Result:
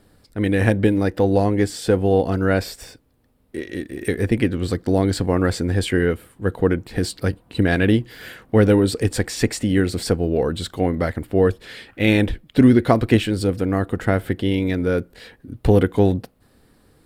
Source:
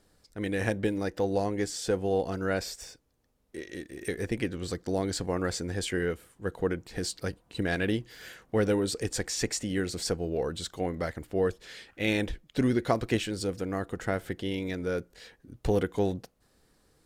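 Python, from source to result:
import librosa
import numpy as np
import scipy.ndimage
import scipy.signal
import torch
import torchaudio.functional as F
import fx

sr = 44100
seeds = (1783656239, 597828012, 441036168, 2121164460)

y = fx.graphic_eq_15(x, sr, hz=(100, 250, 6300), db=(6, 5, -10))
y = y * 10.0 ** (9.0 / 20.0)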